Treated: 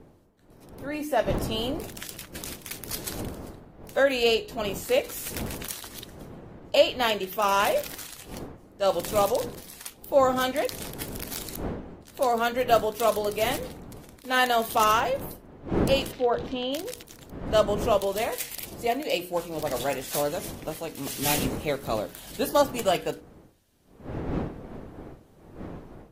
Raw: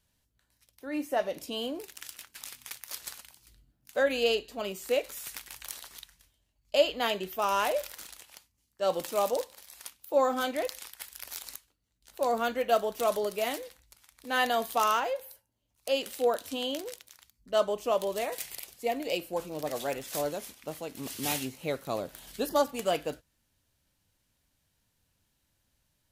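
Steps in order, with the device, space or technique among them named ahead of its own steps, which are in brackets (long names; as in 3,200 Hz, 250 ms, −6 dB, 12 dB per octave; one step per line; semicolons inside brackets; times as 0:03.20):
mains-hum notches 60/120/180/240/300/360/420/480 Hz
0:16.11–0:16.73: high-frequency loss of the air 220 metres
smartphone video outdoors (wind on the microphone 370 Hz −43 dBFS; automatic gain control gain up to 4.5 dB; AAC 48 kbit/s 44,100 Hz)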